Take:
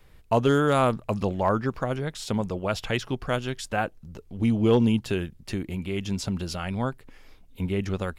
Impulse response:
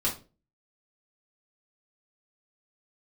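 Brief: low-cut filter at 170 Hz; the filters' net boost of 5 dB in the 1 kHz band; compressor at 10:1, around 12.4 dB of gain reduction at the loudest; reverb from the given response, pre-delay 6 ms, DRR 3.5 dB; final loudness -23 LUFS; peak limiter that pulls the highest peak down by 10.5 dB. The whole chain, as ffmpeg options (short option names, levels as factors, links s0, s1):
-filter_complex "[0:a]highpass=170,equalizer=f=1000:t=o:g=6.5,acompressor=threshold=0.0501:ratio=10,alimiter=limit=0.075:level=0:latency=1,asplit=2[s0][s1];[1:a]atrim=start_sample=2205,adelay=6[s2];[s1][s2]afir=irnorm=-1:irlink=0,volume=0.266[s3];[s0][s3]amix=inputs=2:normalize=0,volume=2.99"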